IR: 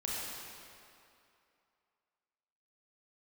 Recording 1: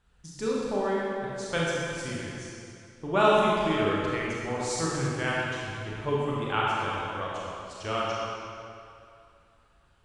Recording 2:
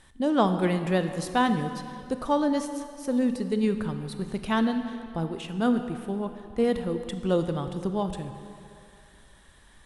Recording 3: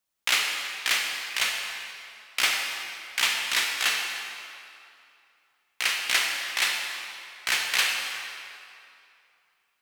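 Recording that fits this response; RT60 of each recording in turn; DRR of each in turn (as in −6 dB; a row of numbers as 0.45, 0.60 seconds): 1; 2.6, 2.5, 2.6 seconds; −6.0, 8.0, 1.0 decibels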